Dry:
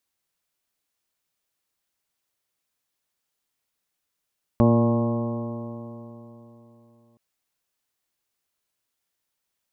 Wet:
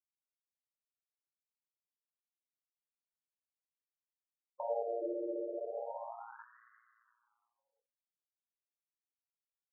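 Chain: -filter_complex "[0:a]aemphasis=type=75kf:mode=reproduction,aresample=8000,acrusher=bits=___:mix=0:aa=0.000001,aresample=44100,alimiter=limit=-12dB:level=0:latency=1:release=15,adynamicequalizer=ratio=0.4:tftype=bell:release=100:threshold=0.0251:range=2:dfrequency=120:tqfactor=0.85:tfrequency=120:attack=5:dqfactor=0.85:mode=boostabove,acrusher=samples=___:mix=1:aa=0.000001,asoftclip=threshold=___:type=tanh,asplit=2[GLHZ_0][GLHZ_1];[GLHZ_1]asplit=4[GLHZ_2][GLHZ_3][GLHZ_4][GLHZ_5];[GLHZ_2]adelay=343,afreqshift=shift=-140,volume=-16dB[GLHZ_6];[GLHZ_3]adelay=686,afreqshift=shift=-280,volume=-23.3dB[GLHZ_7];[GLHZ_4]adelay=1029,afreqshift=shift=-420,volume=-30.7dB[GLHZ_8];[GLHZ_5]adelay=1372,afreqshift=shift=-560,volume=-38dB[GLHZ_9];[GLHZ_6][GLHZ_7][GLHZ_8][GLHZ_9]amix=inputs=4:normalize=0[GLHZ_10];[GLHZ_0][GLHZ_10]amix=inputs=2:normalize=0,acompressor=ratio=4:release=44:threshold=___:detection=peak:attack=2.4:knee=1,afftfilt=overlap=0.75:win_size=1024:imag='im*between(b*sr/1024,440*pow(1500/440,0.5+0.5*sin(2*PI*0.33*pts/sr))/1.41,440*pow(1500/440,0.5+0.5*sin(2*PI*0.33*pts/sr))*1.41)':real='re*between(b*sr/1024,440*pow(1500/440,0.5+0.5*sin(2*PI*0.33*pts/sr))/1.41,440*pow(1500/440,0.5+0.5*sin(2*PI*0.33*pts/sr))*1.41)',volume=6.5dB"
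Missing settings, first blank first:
6, 38, -23.5dB, -35dB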